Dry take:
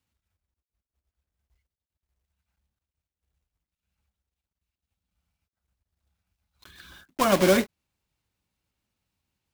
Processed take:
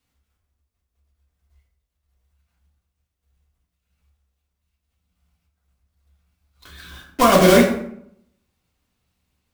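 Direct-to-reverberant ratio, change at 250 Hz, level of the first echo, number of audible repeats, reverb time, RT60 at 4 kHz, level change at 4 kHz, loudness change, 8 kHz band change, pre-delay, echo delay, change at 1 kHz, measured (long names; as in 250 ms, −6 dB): −2.5 dB, +8.5 dB, no echo audible, no echo audible, 0.70 s, 0.45 s, +7.5 dB, +7.0 dB, +7.0 dB, 3 ms, no echo audible, +9.5 dB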